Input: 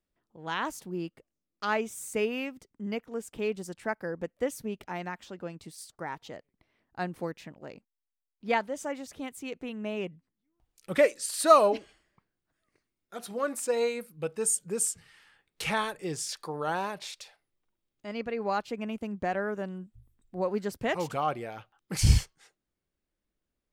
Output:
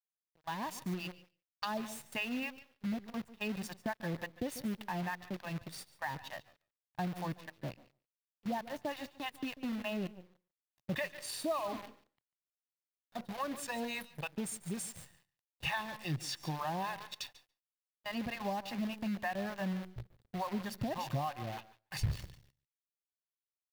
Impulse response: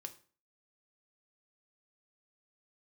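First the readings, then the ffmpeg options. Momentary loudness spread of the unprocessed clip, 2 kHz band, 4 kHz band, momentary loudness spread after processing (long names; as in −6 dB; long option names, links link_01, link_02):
18 LU, −5.5 dB, −4.0 dB, 9 LU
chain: -filter_complex "[0:a]aecho=1:1:1.1:0.89,dynaudnorm=framelen=110:gausssize=13:maxgain=5.5dB,acrossover=split=690[link_01][link_02];[link_01]aeval=exprs='val(0)*(1-1/2+1/2*cos(2*PI*3.4*n/s))':channel_layout=same[link_03];[link_02]aeval=exprs='val(0)*(1-1/2-1/2*cos(2*PI*3.4*n/s))':channel_layout=same[link_04];[link_03][link_04]amix=inputs=2:normalize=0,agate=range=-16dB:threshold=-44dB:ratio=16:detection=peak,asplit=2[link_05][link_06];[1:a]atrim=start_sample=2205,adelay=140[link_07];[link_06][link_07]afir=irnorm=-1:irlink=0,volume=-13dB[link_08];[link_05][link_08]amix=inputs=2:normalize=0,acompressor=threshold=-33dB:ratio=5,bandreject=frequency=2000:width=12,acrusher=bits=8:dc=4:mix=0:aa=0.000001,equalizer=frequency=125:width_type=o:width=1:gain=8,equalizer=frequency=500:width_type=o:width=1:gain=6,equalizer=frequency=2000:width_type=o:width=1:gain=4,equalizer=frequency=4000:width_type=o:width=1:gain=4,equalizer=frequency=8000:width_type=o:width=1:gain=-6,aecho=1:1:144:0.0891,volume=-4.5dB"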